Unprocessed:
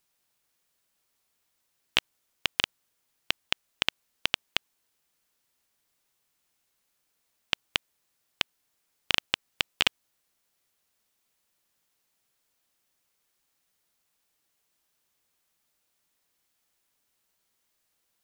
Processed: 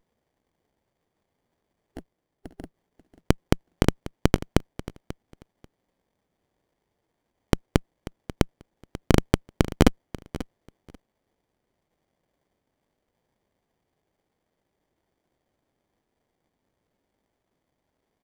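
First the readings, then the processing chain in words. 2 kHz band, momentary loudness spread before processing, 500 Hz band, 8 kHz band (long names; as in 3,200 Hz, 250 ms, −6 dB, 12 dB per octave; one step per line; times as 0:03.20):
−4.0 dB, 6 LU, +17.0 dB, +3.5 dB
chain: time-frequency box erased 0:01.96–0:02.73, 390–9,800 Hz
Butterworth high-pass 160 Hz 96 dB per octave
parametric band 6,900 Hz +8.5 dB 0.26 octaves
repeating echo 539 ms, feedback 17%, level −16 dB
windowed peak hold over 33 samples
level +3.5 dB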